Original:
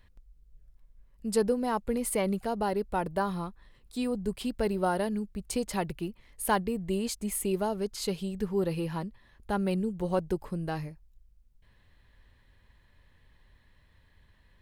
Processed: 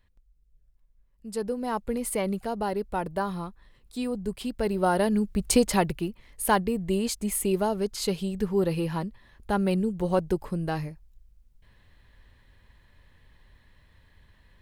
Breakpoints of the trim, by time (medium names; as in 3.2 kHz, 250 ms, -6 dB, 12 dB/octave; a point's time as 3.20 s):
1.30 s -6.5 dB
1.73 s +0.5 dB
4.56 s +0.5 dB
5.49 s +11.5 dB
6.08 s +4 dB